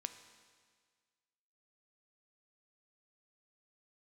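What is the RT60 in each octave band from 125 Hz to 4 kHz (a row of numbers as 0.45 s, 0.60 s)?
1.7 s, 1.7 s, 1.7 s, 1.7 s, 1.7 s, 1.7 s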